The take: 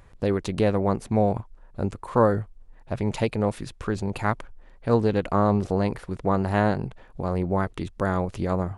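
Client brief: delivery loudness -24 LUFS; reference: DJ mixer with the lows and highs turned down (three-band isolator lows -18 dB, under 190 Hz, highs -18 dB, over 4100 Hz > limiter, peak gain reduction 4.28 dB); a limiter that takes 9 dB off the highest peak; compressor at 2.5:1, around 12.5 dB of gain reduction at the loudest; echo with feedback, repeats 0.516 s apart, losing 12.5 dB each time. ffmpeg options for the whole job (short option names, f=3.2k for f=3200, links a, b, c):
-filter_complex "[0:a]acompressor=threshold=-34dB:ratio=2.5,alimiter=level_in=3dB:limit=-24dB:level=0:latency=1,volume=-3dB,acrossover=split=190 4100:gain=0.126 1 0.126[a][b][c];[a][b][c]amix=inputs=3:normalize=0,aecho=1:1:516|1032|1548:0.237|0.0569|0.0137,volume=18.5dB,alimiter=limit=-10dB:level=0:latency=1"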